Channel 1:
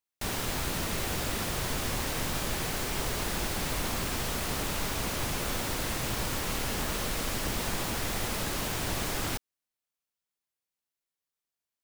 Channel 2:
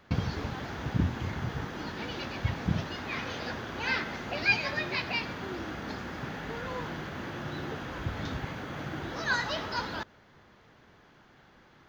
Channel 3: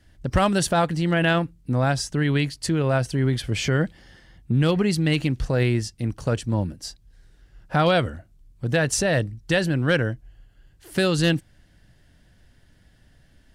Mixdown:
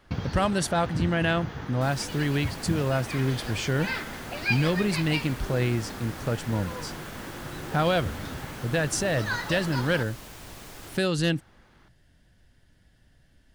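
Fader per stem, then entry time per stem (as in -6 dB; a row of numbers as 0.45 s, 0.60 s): -12.0 dB, -1.5 dB, -4.5 dB; 1.60 s, 0.00 s, 0.00 s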